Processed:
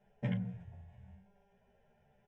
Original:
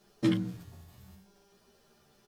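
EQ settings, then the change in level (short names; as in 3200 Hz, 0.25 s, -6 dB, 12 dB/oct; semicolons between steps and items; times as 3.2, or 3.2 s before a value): tape spacing loss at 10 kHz 32 dB; fixed phaser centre 1200 Hz, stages 6; +1.0 dB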